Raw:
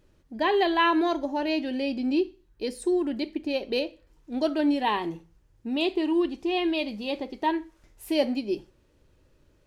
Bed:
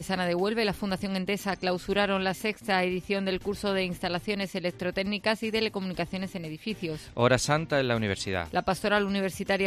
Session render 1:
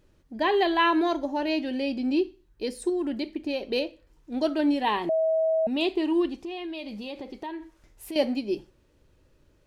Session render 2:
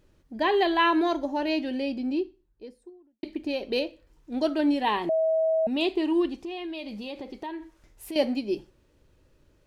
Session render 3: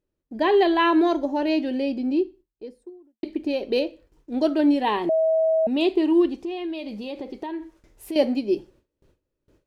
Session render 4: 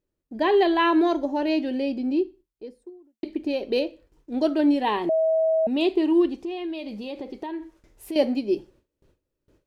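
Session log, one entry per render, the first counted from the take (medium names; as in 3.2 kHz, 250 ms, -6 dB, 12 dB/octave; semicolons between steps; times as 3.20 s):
2.89–3.59 s: compression, threshold -24 dBFS; 5.09–5.67 s: bleep 643 Hz -20.5 dBFS; 6.41–8.16 s: compression 5:1, threshold -33 dBFS
1.52–3.23 s: studio fade out
gate with hold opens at -50 dBFS; peaking EQ 390 Hz +6 dB 1.7 oct
trim -1 dB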